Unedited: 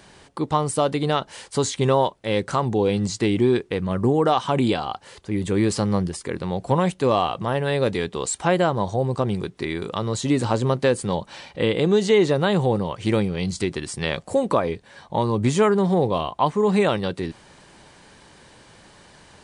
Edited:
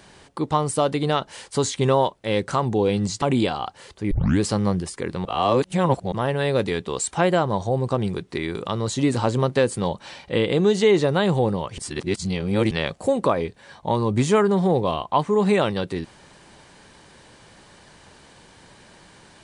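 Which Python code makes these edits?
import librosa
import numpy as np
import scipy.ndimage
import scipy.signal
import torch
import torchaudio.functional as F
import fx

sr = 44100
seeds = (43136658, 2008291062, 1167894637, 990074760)

y = fx.edit(x, sr, fx.cut(start_s=3.22, length_s=1.27),
    fx.tape_start(start_s=5.38, length_s=0.29),
    fx.reverse_span(start_s=6.52, length_s=0.87),
    fx.reverse_span(start_s=13.05, length_s=0.93), tone=tone)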